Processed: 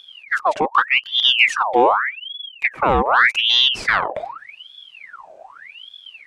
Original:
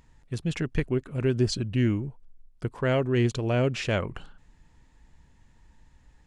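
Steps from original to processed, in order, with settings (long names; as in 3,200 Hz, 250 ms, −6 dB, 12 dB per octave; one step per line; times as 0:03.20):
low-shelf EQ 490 Hz +11 dB
in parallel at −3 dB: downward compressor, threshold −25 dBFS, peak gain reduction 15 dB
on the sum: ring modulator whose carrier an LFO sweeps 2,000 Hz, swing 70%, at 0.84 Hz
level +1.5 dB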